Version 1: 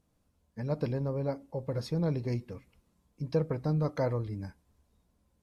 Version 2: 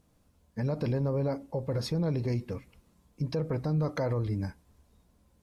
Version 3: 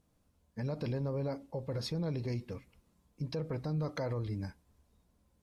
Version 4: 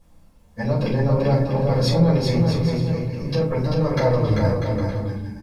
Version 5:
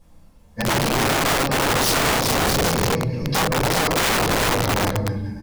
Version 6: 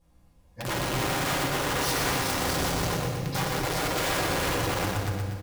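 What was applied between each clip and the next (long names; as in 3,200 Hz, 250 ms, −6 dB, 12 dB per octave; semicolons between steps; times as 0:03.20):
brickwall limiter −29 dBFS, peak gain reduction 11.5 dB; level +6.5 dB
dynamic equaliser 3,700 Hz, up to +5 dB, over −57 dBFS, Q 0.9; level −6 dB
in parallel at −9.5 dB: hard clipping −35 dBFS, distortion −12 dB; on the sum: bouncing-ball delay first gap 390 ms, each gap 0.65×, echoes 5; convolution reverb RT60 0.40 s, pre-delay 4 ms, DRR −8.5 dB; level +2.5 dB
wrap-around overflow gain 17 dB; level +2.5 dB
notch comb filter 220 Hz; on a send: repeating echo 122 ms, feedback 55%, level −5 dB; on the sum: dense smooth reverb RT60 1.6 s, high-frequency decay 0.9×, DRR 5.5 dB; level −9 dB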